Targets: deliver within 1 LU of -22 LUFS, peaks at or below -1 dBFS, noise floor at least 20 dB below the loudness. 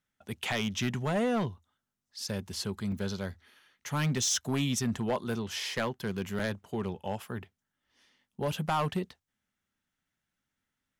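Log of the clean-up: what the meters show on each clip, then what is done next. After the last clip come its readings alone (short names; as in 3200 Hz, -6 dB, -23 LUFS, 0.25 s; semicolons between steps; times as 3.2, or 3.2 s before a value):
clipped 1.1%; flat tops at -23.5 dBFS; dropouts 2; longest dropout 4.1 ms; loudness -32.5 LUFS; peak -23.5 dBFS; loudness target -22.0 LUFS
-> clip repair -23.5 dBFS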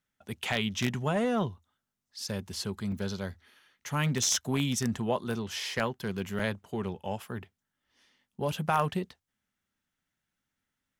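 clipped 0.0%; dropouts 2; longest dropout 4.1 ms
-> interpolate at 2.92/6.39, 4.1 ms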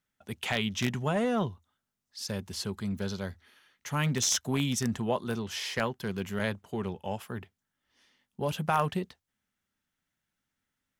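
dropouts 0; loudness -31.5 LUFS; peak -14.5 dBFS; loudness target -22.0 LUFS
-> gain +9.5 dB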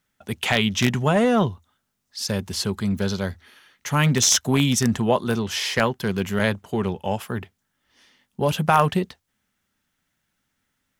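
loudness -22.0 LUFS; peak -5.0 dBFS; noise floor -76 dBFS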